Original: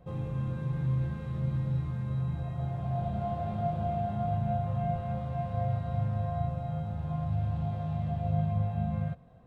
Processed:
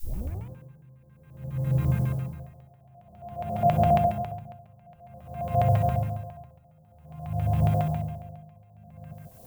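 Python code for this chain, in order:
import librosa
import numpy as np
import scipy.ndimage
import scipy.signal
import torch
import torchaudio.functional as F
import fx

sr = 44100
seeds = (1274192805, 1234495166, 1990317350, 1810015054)

p1 = fx.tape_start_head(x, sr, length_s=0.5)
p2 = fx.filter_lfo_lowpass(p1, sr, shape='square', hz=7.3, low_hz=650.0, high_hz=2600.0, q=2.5)
p3 = p2 + fx.echo_single(p2, sr, ms=142, db=-8.0, dry=0)
p4 = fx.dmg_noise_colour(p3, sr, seeds[0], colour='violet', level_db=-58.0)
p5 = p4 * 10.0 ** (-32 * (0.5 - 0.5 * np.cos(2.0 * np.pi * 0.52 * np.arange(len(p4)) / sr)) / 20.0)
y = F.gain(torch.from_numpy(p5), 7.5).numpy()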